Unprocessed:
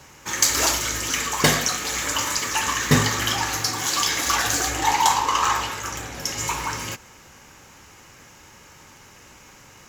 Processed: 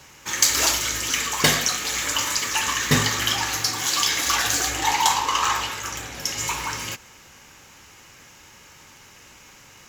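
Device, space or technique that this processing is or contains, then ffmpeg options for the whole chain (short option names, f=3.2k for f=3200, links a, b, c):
presence and air boost: -af "equalizer=f=3.2k:t=o:w=1.8:g=5,highshelf=f=9.2k:g=5,volume=-3dB"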